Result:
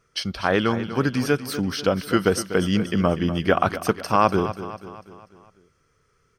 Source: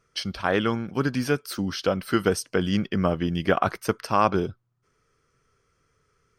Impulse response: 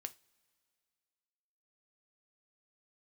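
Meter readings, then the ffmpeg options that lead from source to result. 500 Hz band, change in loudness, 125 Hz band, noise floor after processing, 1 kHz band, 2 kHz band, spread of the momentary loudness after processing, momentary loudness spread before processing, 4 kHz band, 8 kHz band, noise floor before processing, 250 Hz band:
+3.0 dB, +3.0 dB, +2.5 dB, -66 dBFS, +3.0 dB, +3.0 dB, 8 LU, 6 LU, +3.0 dB, +3.0 dB, -70 dBFS, +3.0 dB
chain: -af "aecho=1:1:245|490|735|980|1225:0.237|0.119|0.0593|0.0296|0.0148,volume=2.5dB"

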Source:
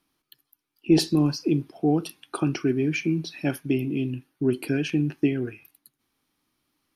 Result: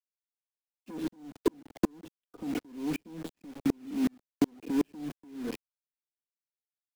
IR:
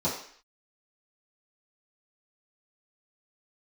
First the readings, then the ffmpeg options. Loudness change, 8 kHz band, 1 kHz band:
-9.0 dB, -11.0 dB, -7.0 dB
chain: -filter_complex "[0:a]equalizer=f=280:w=0.66:g=8.5,asplit=2[a][b];[b]adelay=96,lowpass=f=990:p=1,volume=-21.5dB,asplit=2[c][d];[d]adelay=96,lowpass=f=990:p=1,volume=0.17[e];[c][e]amix=inputs=2:normalize=0[f];[a][f]amix=inputs=2:normalize=0,volume=16dB,asoftclip=hard,volume=-16dB,asplit=2[g][h];[h]alimiter=level_in=0.5dB:limit=-24dB:level=0:latency=1:release=72,volume=-0.5dB,volume=0dB[i];[g][i]amix=inputs=2:normalize=0,aecho=1:1:4.1:0.83,acompressor=threshold=-22dB:ratio=2.5,aresample=8000,aresample=44100,lowshelf=f=94:g=-9,acrusher=bits=4:mix=0:aa=0.000001,agate=range=-19dB:threshold=-31dB:ratio=16:detection=peak,acrossover=split=260|590[j][k][l];[j]acompressor=threshold=-34dB:ratio=4[m];[k]acompressor=threshold=-29dB:ratio=4[n];[l]acompressor=threshold=-44dB:ratio=4[o];[m][n][o]amix=inputs=3:normalize=0,aeval=exprs='val(0)*pow(10,-40*if(lt(mod(-2.7*n/s,1),2*abs(-2.7)/1000),1-mod(-2.7*n/s,1)/(2*abs(-2.7)/1000),(mod(-2.7*n/s,1)-2*abs(-2.7)/1000)/(1-2*abs(-2.7)/1000))/20)':c=same,volume=5.5dB"

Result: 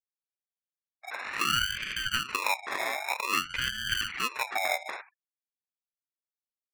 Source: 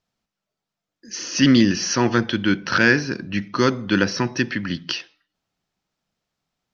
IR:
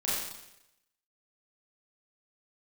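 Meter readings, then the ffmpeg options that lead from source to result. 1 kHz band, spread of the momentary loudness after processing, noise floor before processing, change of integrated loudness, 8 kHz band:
-3.5 dB, 11 LU, -85 dBFS, -9.5 dB, n/a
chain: -filter_complex "[0:a]afftfilt=real='real(if(lt(b,1008),b+24*(1-2*mod(floor(b/24),2)),b),0)':imag='imag(if(lt(b,1008),b+24*(1-2*mod(floor(b/24),2)),b),0)':win_size=2048:overlap=0.75,tiltshelf=f=1.4k:g=-4.5,asplit=2[a][b];[b]adelay=79,lowpass=f=3.6k:p=1,volume=-20.5dB,asplit=2[c][d];[d]adelay=79,lowpass=f=3.6k:p=1,volume=0.27[e];[c][e]amix=inputs=2:normalize=0[f];[a][f]amix=inputs=2:normalize=0,acompressor=threshold=-27dB:ratio=16,highpass=f=640:t=q:w=4.9,acrusher=samples=29:mix=1:aa=0.000001,afftfilt=real='re*gte(hypot(re,im),0.0112)':imag='im*gte(hypot(re,im),0.0112)':win_size=1024:overlap=0.75,aeval=exprs='val(0)*sin(2*PI*1900*n/s+1900*0.25/0.52*sin(2*PI*0.52*n/s))':c=same,volume=-3dB"

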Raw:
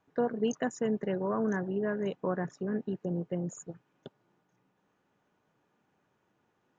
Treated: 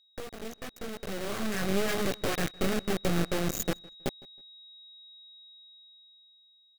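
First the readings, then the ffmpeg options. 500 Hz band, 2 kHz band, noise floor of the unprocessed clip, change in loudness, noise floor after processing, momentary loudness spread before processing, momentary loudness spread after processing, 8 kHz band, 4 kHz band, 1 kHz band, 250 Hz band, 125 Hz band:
-1.0 dB, +6.5 dB, -76 dBFS, +0.5 dB, -63 dBFS, 7 LU, 20 LU, n/a, +15.0 dB, +1.5 dB, -0.5 dB, +2.5 dB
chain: -filter_complex "[0:a]acompressor=threshold=-37dB:ratio=16,adynamicequalizer=threshold=0.00141:dfrequency=670:dqfactor=1.1:tfrequency=670:tqfactor=1.1:attack=5:release=100:ratio=0.375:range=1.5:mode=cutabove:tftype=bell,flanger=delay=16:depth=6.4:speed=0.97,acrusher=bits=5:dc=4:mix=0:aa=0.000001,aeval=exprs='val(0)+0.000316*sin(2*PI*3800*n/s)':c=same,equalizer=f=940:w=6.9:g=-11.5,dynaudnorm=f=320:g=9:m=13dB,asplit=2[a][b];[b]adelay=160,lowpass=f=3.9k:p=1,volume=-23dB,asplit=2[c][d];[d]adelay=160,lowpass=f=3.9k:p=1,volume=0.27[e];[c][e]amix=inputs=2:normalize=0[f];[a][f]amix=inputs=2:normalize=0,volume=7.5dB"

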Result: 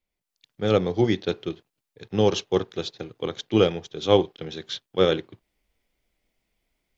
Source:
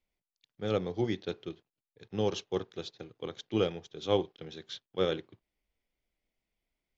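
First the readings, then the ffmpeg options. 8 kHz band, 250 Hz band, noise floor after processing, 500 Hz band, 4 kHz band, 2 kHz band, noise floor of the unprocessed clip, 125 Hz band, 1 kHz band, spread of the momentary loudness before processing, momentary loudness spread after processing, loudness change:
n/a, +10.0 dB, -84 dBFS, +9.5 dB, +9.5 dB, +9.5 dB, under -85 dBFS, +10.0 dB, +9.5 dB, 12 LU, 12 LU, +9.5 dB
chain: -af "dynaudnorm=f=170:g=3:m=10dB"

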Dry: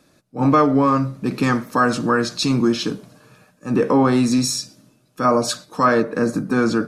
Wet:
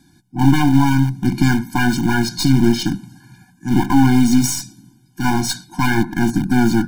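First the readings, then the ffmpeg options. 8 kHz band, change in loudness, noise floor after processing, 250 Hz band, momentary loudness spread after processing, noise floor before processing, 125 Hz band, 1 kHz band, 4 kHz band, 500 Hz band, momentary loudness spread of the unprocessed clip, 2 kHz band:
+3.5 dB, +2.0 dB, -54 dBFS, +4.0 dB, 10 LU, -59 dBFS, +7.5 dB, -2.5 dB, +1.5 dB, -8.0 dB, 9 LU, +2.5 dB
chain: -filter_complex "[0:a]bass=f=250:g=5,treble=f=4k:g=3,asplit=2[a][b];[b]aeval=exprs='(mod(7.5*val(0)+1,2)-1)/7.5':c=same,volume=-11dB[c];[a][c]amix=inputs=2:normalize=0,aeval=exprs='0.668*(cos(1*acos(clip(val(0)/0.668,-1,1)))-cos(1*PI/2))+0.15*(cos(4*acos(clip(val(0)/0.668,-1,1)))-cos(4*PI/2))':c=same,afftfilt=real='re*eq(mod(floor(b*sr/1024/350),2),0)':imag='im*eq(mod(floor(b*sr/1024/350),2),0)':win_size=1024:overlap=0.75,volume=1.5dB"

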